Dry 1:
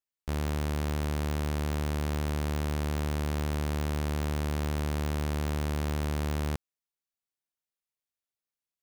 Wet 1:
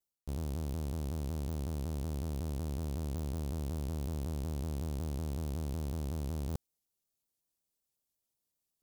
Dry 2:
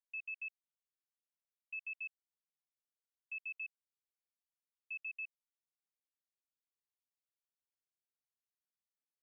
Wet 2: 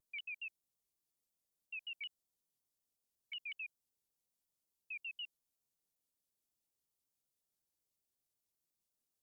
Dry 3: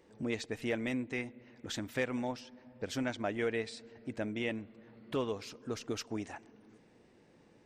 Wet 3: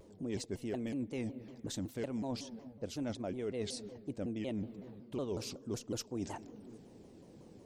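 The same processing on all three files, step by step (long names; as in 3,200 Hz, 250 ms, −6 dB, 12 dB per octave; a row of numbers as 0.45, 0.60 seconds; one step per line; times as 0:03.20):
parametric band 1,800 Hz −15 dB 1.9 octaves
reversed playback
downward compressor 6 to 1, threshold −45 dBFS
reversed playback
pitch modulation by a square or saw wave saw down 5.4 Hz, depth 250 cents
level +9 dB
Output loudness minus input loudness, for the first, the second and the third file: −6.5, −2.0, −3.0 LU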